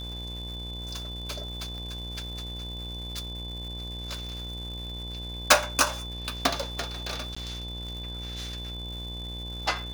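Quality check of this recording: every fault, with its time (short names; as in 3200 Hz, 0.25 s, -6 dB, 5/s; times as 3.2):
buzz 60 Hz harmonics 18 -38 dBFS
crackle 390/s -40 dBFS
tone 3500 Hz -38 dBFS
1.78 pop
4.29 pop
7.35–7.37 gap 15 ms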